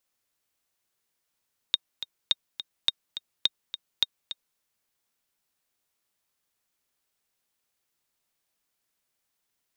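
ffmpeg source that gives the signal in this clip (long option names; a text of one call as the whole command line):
ffmpeg -f lavfi -i "aevalsrc='pow(10,(-8-12*gte(mod(t,2*60/210),60/210))/20)*sin(2*PI*3710*mod(t,60/210))*exp(-6.91*mod(t,60/210)/0.03)':duration=2.85:sample_rate=44100" out.wav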